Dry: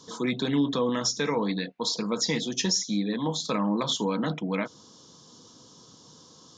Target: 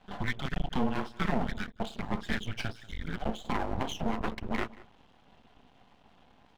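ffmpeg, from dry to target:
-filter_complex "[0:a]asplit=2[s0][s1];[s1]alimiter=limit=0.0631:level=0:latency=1:release=155,volume=0.944[s2];[s0][s2]amix=inputs=2:normalize=0,aeval=exprs='sgn(val(0))*max(abs(val(0))-0.002,0)':c=same,highpass=f=330:t=q:w=0.5412,highpass=f=330:t=q:w=1.307,lowpass=f=3000:t=q:w=0.5176,lowpass=f=3000:t=q:w=0.7071,lowpass=f=3000:t=q:w=1.932,afreqshift=-260,aeval=exprs='max(val(0),0)':c=same,asplit=2[s3][s4];[s4]adelay=186.6,volume=0.1,highshelf=f=4000:g=-4.2[s5];[s3][s5]amix=inputs=2:normalize=0"

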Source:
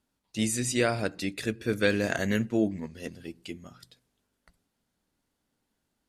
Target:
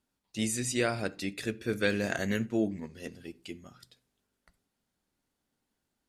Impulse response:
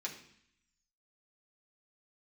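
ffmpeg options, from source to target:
-filter_complex "[0:a]asplit=2[s0][s1];[1:a]atrim=start_sample=2205,atrim=end_sample=4410[s2];[s1][s2]afir=irnorm=-1:irlink=0,volume=0.251[s3];[s0][s3]amix=inputs=2:normalize=0,volume=0.631"

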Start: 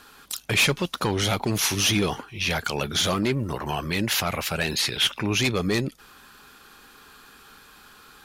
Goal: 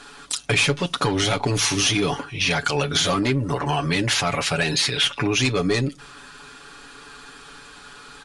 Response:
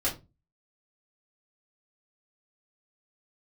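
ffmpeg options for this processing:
-filter_complex "[0:a]aecho=1:1:7:0.74,acompressor=threshold=0.0631:ratio=3,asplit=2[s0][s1];[1:a]atrim=start_sample=2205[s2];[s1][s2]afir=irnorm=-1:irlink=0,volume=0.0562[s3];[s0][s3]amix=inputs=2:normalize=0,aresample=22050,aresample=44100,volume=1.78"

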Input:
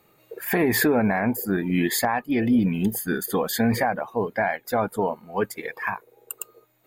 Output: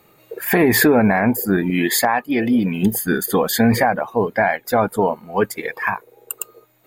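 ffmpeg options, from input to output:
-filter_complex "[0:a]asettb=1/sr,asplit=3[s0][s1][s2];[s0]atrim=end=1.704[s3];[s1]atrim=start=1.7:end=2.83,asetpts=PTS-STARTPTS,afade=t=in:d=0.004:c=qsin,afade=t=out:st=1.126:d=0.004:c=qsin,lowshelf=f=160:g=-12[s4];[s2]atrim=start=2.826[s5];[s3][s4]acrossfade=d=0.004:c1=hsin:c2=qsin[s6];[s6][s5]acrossfade=d=0.004:c1=qsin:c2=hsin,volume=2.11"

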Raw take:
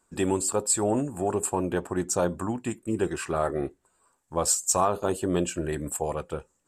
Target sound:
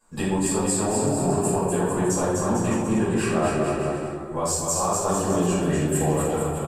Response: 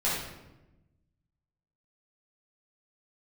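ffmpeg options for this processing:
-filter_complex "[0:a]acompressor=threshold=0.0316:ratio=6,aecho=1:1:250|450|610|738|840.4:0.631|0.398|0.251|0.158|0.1[s0];[1:a]atrim=start_sample=2205,asetrate=48510,aresample=44100[s1];[s0][s1]afir=irnorm=-1:irlink=0"

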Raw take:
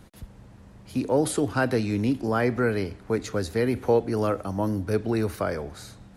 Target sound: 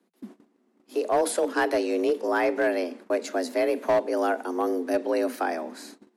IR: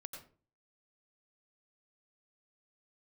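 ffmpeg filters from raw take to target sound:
-af "afreqshift=170,agate=range=0.112:threshold=0.00631:ratio=16:detection=peak,asoftclip=type=hard:threshold=0.158"

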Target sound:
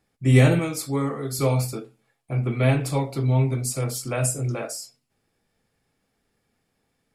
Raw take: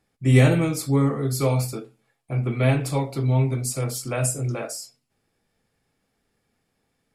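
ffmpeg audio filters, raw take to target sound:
-filter_complex "[0:a]asettb=1/sr,asplit=3[s0][s1][s2];[s0]atrim=end=0.594[s3];[s1]atrim=start=0.59:end=1.39,asetpts=PTS-STARTPTS,afade=t=in:d=0.004:c=qsin,afade=t=out:st=0.796:d=0.004:c=qsin,lowshelf=f=270:g=-9.5[s4];[s2]atrim=start=1.386[s5];[s3][s4]acrossfade=d=0.004:c1=hsin:c2=qsin[s6];[s6][s5]acrossfade=d=0.004:c1=qsin:c2=hsin"

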